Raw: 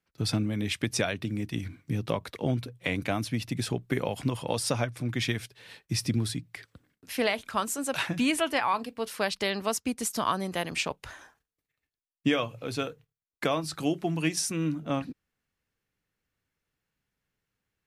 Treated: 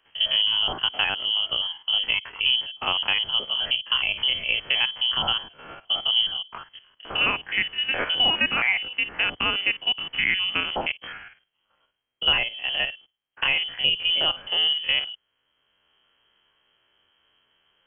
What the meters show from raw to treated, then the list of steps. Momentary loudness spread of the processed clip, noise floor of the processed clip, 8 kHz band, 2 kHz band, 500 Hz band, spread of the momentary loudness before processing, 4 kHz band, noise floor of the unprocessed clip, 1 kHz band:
7 LU, -75 dBFS, under -40 dB, +10.0 dB, -6.5 dB, 8 LU, +17.0 dB, under -85 dBFS, +0.5 dB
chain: stepped spectrum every 50 ms; inverted band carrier 3200 Hz; three-band squash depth 40%; gain +6.5 dB

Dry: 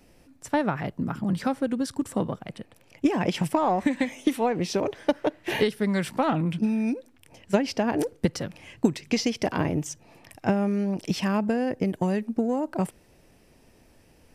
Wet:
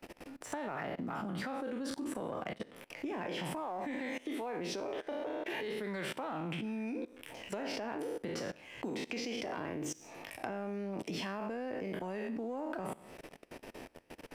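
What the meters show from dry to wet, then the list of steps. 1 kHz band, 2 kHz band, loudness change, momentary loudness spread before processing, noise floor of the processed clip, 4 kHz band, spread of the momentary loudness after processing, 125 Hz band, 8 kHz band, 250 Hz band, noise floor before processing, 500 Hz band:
-11.5 dB, -8.0 dB, -13.0 dB, 6 LU, -59 dBFS, -8.5 dB, 10 LU, -16.0 dB, -9.5 dB, -14.5 dB, -58 dBFS, -11.0 dB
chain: spectral trails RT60 0.47 s; three-band isolator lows -13 dB, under 250 Hz, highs -13 dB, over 3500 Hz; limiter -20 dBFS, peak gain reduction 11 dB; high shelf 7500 Hz +7 dB; level quantiser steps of 20 dB; sample leveller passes 1; compressor 3:1, threshold -51 dBFS, peak gain reduction 13.5 dB; gain +10.5 dB

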